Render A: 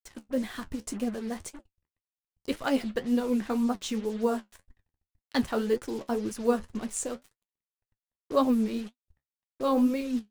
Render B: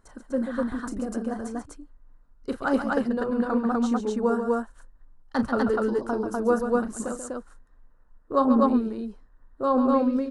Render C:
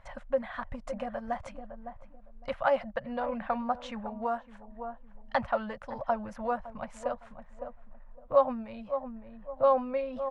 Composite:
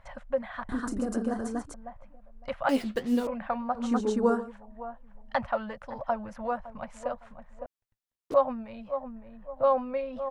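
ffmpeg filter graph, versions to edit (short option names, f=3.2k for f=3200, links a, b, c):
-filter_complex "[1:a]asplit=2[a][b];[0:a]asplit=2[c][d];[2:a]asplit=5[e][f][g][h][i];[e]atrim=end=0.692[j];[a]atrim=start=0.688:end=1.742[k];[f]atrim=start=1.738:end=2.692[l];[c]atrim=start=2.688:end=3.272[m];[g]atrim=start=3.268:end=3.98[n];[b]atrim=start=3.74:end=4.52[o];[h]atrim=start=4.28:end=7.662[p];[d]atrim=start=7.658:end=8.342[q];[i]atrim=start=8.338[r];[j][k]acrossfade=d=0.004:c1=hsin:c2=hsin[s];[s][l]acrossfade=d=0.004:c1=hsin:c2=hsin[t];[t][m]acrossfade=d=0.004:c1=hsin:c2=hsin[u];[u][n]acrossfade=d=0.004:c1=hsin:c2=hsin[v];[v][o]acrossfade=d=0.24:c1=tri:c2=tri[w];[w][p]acrossfade=d=0.24:c1=tri:c2=tri[x];[x][q]acrossfade=d=0.004:c1=hsin:c2=hsin[y];[y][r]acrossfade=d=0.004:c1=hsin:c2=hsin"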